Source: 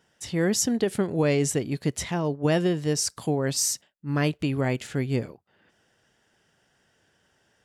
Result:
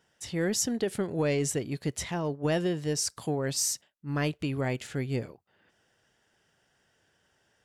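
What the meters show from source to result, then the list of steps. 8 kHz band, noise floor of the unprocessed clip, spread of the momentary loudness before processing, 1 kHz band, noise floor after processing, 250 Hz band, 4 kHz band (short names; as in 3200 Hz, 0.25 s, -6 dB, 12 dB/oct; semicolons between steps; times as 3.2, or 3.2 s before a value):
-3.5 dB, -68 dBFS, 6 LU, -4.0 dB, -71 dBFS, -5.5 dB, -3.5 dB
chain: in parallel at -7.5 dB: soft clip -19 dBFS, distortion -14 dB; on the sum: bell 220 Hz -2.5 dB 1.3 oct; gain -6 dB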